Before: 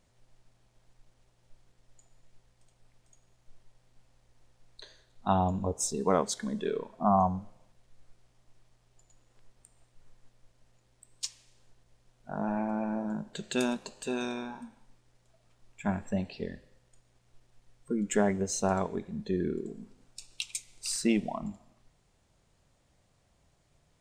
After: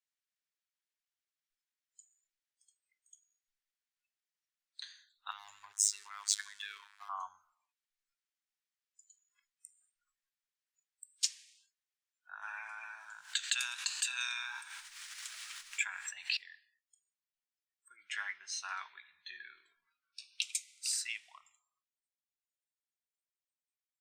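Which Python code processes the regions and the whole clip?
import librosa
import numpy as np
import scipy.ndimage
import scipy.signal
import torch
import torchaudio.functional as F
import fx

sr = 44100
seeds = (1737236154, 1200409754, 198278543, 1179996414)

y = fx.chain(x, sr, fx.robotise(hz=102.0),
    fx.over_compress(threshold_db=-33.0, ratio=-1.0),
    fx.leveller(passes=1), at=(5.31, 7.09))
y = fx.chain(y, sr, fx.peak_eq(hz=410.0, db=-8.0, octaves=0.36),
    fx.env_flatten(amount_pct=70), at=(12.42, 16.37))
y = fx.chain(y, sr, fx.savgol(points=15),
    fx.doubler(ms=16.0, db=-8.0), at=(17.96, 20.42))
y = scipy.signal.sosfilt(scipy.signal.cheby2(4, 50, 570.0, 'highpass', fs=sr, output='sos'), y)
y = fx.noise_reduce_blind(y, sr, reduce_db=24)
y = fx.rider(y, sr, range_db=4, speed_s=2.0)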